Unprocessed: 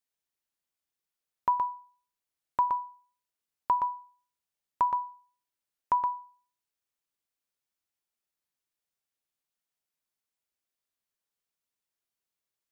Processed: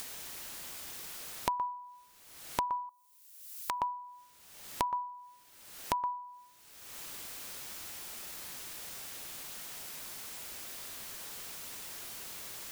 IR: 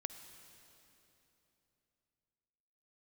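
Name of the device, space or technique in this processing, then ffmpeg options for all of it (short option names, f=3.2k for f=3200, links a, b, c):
upward and downward compression: -filter_complex "[0:a]asettb=1/sr,asplit=3[a][b][c];[a]atrim=end=2.894[d];[b]atrim=start=2.89:end=3.82,asetpts=PTS-STARTPTS,afade=t=in:d=0.004:c=qsin,afade=t=out:st=0.926:d=0.004:c=qsin,aderivative[e];[c]atrim=start=3.816[f];[d][e]acrossfade=d=0.004:c1=hsin:c2=qsin[g];[g][f]acrossfade=d=0.004:c1=qsin:c2=hsin,acompressor=mode=upward:threshold=-32dB:ratio=2.5,acompressor=threshold=-46dB:ratio=5,volume=13dB"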